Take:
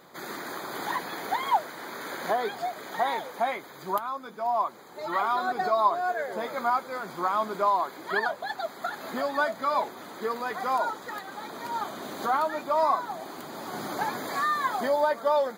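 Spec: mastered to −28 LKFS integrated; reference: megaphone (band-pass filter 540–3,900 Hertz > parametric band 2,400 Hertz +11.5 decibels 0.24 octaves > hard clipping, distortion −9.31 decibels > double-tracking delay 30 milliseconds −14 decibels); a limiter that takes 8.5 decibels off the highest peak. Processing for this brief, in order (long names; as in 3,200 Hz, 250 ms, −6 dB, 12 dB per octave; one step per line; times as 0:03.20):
brickwall limiter −20 dBFS
band-pass filter 540–3,900 Hz
parametric band 2,400 Hz +11.5 dB 0.24 octaves
hard clipping −30 dBFS
double-tracking delay 30 ms −14 dB
level +6.5 dB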